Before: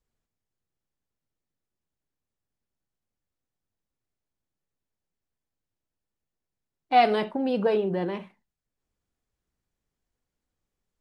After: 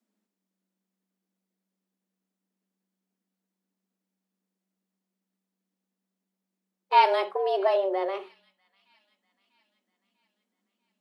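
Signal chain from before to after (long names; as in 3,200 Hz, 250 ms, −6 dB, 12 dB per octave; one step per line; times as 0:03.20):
delay with a high-pass on its return 644 ms, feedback 53%, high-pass 2,000 Hz, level −24 dB
frequency shifter +190 Hz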